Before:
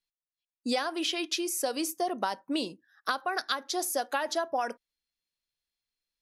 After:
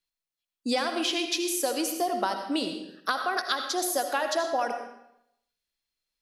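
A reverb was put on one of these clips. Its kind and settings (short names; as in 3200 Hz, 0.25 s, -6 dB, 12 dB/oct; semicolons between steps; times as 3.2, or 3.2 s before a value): digital reverb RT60 0.78 s, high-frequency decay 0.9×, pre-delay 40 ms, DRR 5.5 dB; gain +2 dB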